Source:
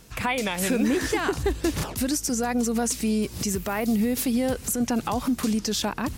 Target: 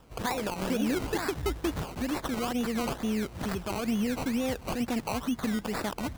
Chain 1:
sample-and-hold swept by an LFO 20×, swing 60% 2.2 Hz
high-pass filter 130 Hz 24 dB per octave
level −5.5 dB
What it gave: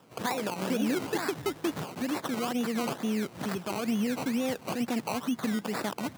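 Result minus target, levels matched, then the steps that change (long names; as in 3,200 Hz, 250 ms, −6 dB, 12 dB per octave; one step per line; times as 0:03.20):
125 Hz band −2.5 dB
remove: high-pass filter 130 Hz 24 dB per octave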